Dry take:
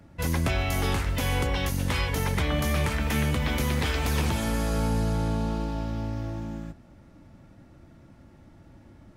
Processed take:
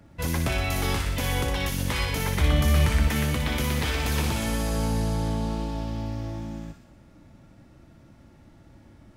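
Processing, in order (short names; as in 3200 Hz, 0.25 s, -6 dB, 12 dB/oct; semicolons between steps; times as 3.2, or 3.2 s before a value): de-hum 87.46 Hz, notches 33; 2.41–3.08 low shelf 120 Hz +10 dB; thin delay 60 ms, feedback 62%, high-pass 2300 Hz, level -3 dB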